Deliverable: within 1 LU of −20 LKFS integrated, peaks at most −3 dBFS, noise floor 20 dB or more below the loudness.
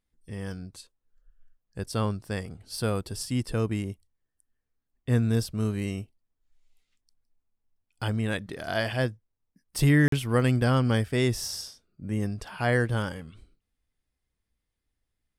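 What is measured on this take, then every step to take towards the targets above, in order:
number of dropouts 1; longest dropout 43 ms; integrated loudness −28.0 LKFS; sample peak −9.5 dBFS; target loudness −20.0 LKFS
→ repair the gap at 0:10.08, 43 ms
level +8 dB
brickwall limiter −3 dBFS

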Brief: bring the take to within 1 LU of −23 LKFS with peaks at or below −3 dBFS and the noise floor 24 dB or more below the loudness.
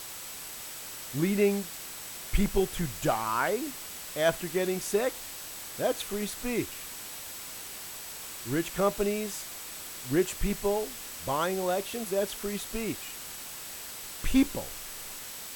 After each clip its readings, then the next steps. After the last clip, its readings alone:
interfering tone 7,900 Hz; level of the tone −50 dBFS; background noise floor −42 dBFS; target noise floor −56 dBFS; integrated loudness −31.5 LKFS; sample peak −12.0 dBFS; target loudness −23.0 LKFS
→ notch filter 7,900 Hz, Q 30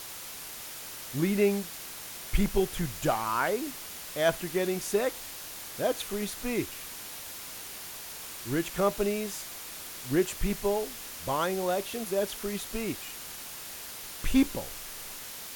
interfering tone none found; background noise floor −42 dBFS; target noise floor −56 dBFS
→ noise reduction from a noise print 14 dB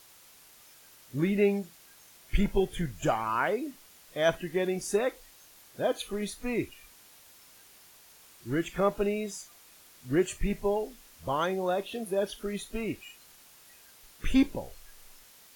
background noise floor −56 dBFS; integrated loudness −31.0 LKFS; sample peak −12.5 dBFS; target loudness −23.0 LKFS
→ level +8 dB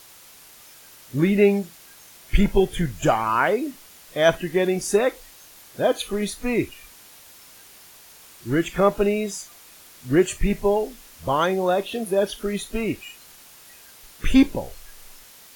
integrated loudness −23.0 LKFS; sample peak −4.5 dBFS; background noise floor −48 dBFS

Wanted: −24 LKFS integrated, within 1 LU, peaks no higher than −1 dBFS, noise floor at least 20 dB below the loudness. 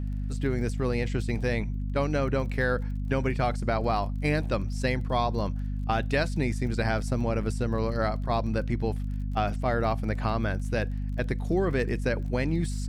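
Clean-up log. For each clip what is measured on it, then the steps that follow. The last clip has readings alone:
crackle rate 25 per second; mains hum 50 Hz; hum harmonics up to 250 Hz; level of the hum −28 dBFS; integrated loudness −28.5 LKFS; sample peak −12.0 dBFS; target loudness −24.0 LKFS
→ click removal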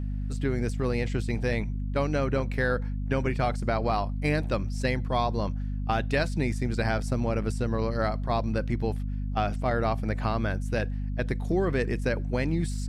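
crackle rate 0 per second; mains hum 50 Hz; hum harmonics up to 250 Hz; level of the hum −28 dBFS
→ hum removal 50 Hz, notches 5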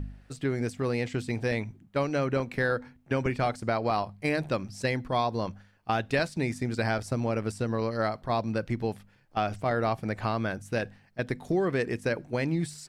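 mains hum none found; integrated loudness −30.0 LKFS; sample peak −14.5 dBFS; target loudness −24.0 LKFS
→ level +6 dB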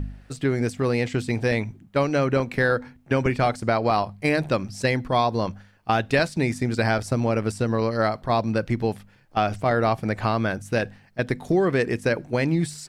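integrated loudness −24.0 LKFS; sample peak −8.5 dBFS; background noise floor −55 dBFS

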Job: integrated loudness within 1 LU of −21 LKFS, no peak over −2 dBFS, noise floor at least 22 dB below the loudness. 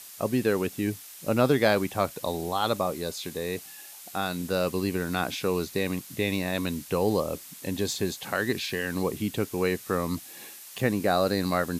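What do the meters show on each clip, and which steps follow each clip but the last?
background noise floor −46 dBFS; target noise floor −50 dBFS; integrated loudness −28.0 LKFS; sample peak −8.5 dBFS; target loudness −21.0 LKFS
→ broadband denoise 6 dB, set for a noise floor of −46 dBFS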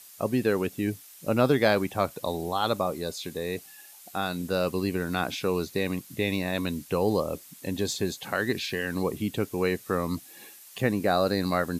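background noise floor −50 dBFS; target noise floor −51 dBFS
→ broadband denoise 6 dB, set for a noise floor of −50 dBFS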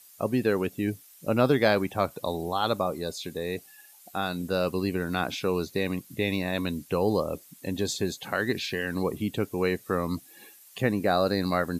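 background noise floor −54 dBFS; integrated loudness −28.5 LKFS; sample peak −8.5 dBFS; target loudness −21.0 LKFS
→ level +7.5 dB
brickwall limiter −2 dBFS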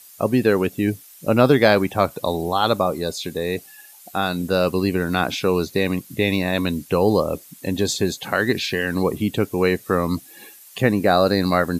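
integrated loudness −21.0 LKFS; sample peak −2.0 dBFS; background noise floor −46 dBFS

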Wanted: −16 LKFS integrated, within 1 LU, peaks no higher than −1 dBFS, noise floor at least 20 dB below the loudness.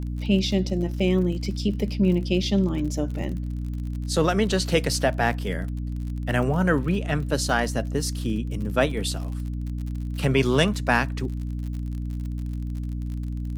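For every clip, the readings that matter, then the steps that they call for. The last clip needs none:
crackle rate 46 per second; mains hum 60 Hz; hum harmonics up to 300 Hz; level of the hum −27 dBFS; integrated loudness −25.5 LKFS; sample peak −5.5 dBFS; target loudness −16.0 LKFS
→ click removal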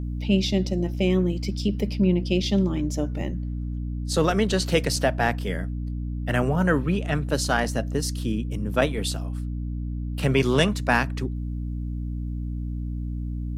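crackle rate 0.15 per second; mains hum 60 Hz; hum harmonics up to 300 Hz; level of the hum −27 dBFS
→ hum removal 60 Hz, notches 5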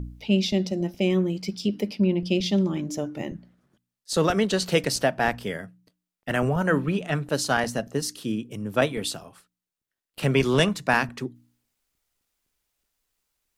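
mains hum none found; integrated loudness −25.0 LKFS; sample peak −6.5 dBFS; target loudness −16.0 LKFS
→ level +9 dB
brickwall limiter −1 dBFS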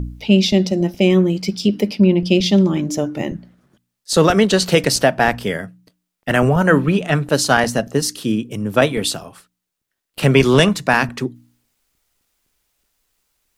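integrated loudness −16.5 LKFS; sample peak −1.0 dBFS; background noise floor −79 dBFS

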